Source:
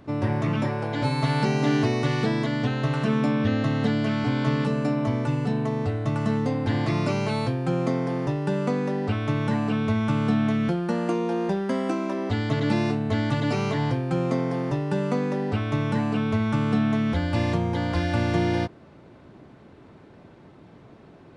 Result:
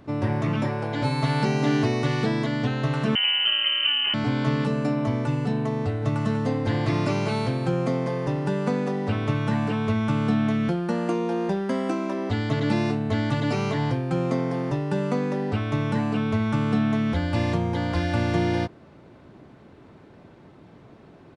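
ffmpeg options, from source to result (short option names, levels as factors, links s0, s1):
-filter_complex "[0:a]asettb=1/sr,asplit=3[s0][s1][s2];[s0]atrim=end=3.154[s3];[s1]atrim=start=3.15:end=4.14,asetpts=PTS-STARTPTS,afade=t=in:d=0.004:c=qsin,afade=t=out:st=0.986:d=0.004:c=qsin,lowpass=f=2700:t=q:w=0.5098,lowpass=f=2700:t=q:w=0.6013,lowpass=f=2700:t=q:w=0.9,lowpass=f=2700:t=q:w=2.563,afreqshift=-3200[s4];[s2]atrim=start=4.136[s5];[s3][s4]acrossfade=d=0.004:c1=hsin:c2=qsin[s6];[s6][s5]acrossfade=d=0.004:c1=qsin:c2=hsin,asplit=3[s7][s8][s9];[s7]afade=t=out:st=6.01:d=0.02[s10];[s8]aecho=1:1:193:0.398,afade=t=in:st=6.01:d=0.02,afade=t=out:st=9.92:d=0.02[s11];[s9]afade=t=in:st=9.92:d=0.02[s12];[s10][s11][s12]amix=inputs=3:normalize=0"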